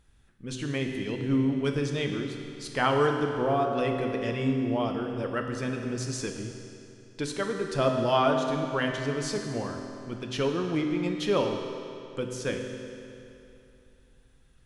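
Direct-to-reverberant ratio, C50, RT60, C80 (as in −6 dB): 3.0 dB, 4.5 dB, 2.8 s, 5.5 dB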